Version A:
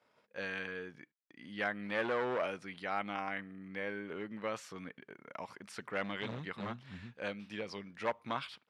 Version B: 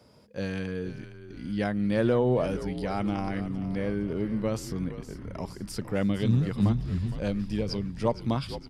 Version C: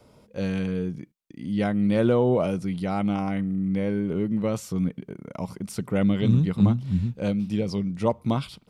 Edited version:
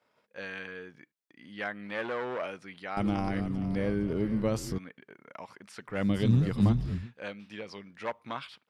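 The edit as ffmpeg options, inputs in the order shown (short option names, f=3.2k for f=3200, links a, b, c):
-filter_complex "[1:a]asplit=2[a][b];[0:a]asplit=3[c][d][e];[c]atrim=end=2.972[f];[a]atrim=start=2.968:end=4.782[g];[d]atrim=start=4.778:end=6.11[h];[b]atrim=start=5.87:end=7.09[i];[e]atrim=start=6.85[j];[f][g]acrossfade=d=0.004:c1=hsin:c2=hsin[k];[k][h]acrossfade=d=0.004:c1=hsin:c2=hsin[l];[l][i]acrossfade=d=0.24:c1=tri:c2=tri[m];[m][j]acrossfade=d=0.24:c1=tri:c2=tri"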